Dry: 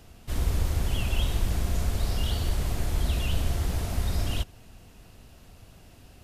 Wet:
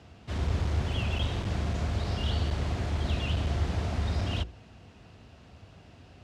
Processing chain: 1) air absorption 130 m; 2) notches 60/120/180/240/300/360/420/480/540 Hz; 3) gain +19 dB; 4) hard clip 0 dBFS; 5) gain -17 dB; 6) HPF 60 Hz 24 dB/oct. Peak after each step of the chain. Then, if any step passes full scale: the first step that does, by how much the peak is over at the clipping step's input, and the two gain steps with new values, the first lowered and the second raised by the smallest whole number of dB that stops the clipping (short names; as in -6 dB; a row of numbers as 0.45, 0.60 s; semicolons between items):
-13.5, -14.0, +5.0, 0.0, -17.0, -17.0 dBFS; step 3, 5.0 dB; step 3 +14 dB, step 5 -12 dB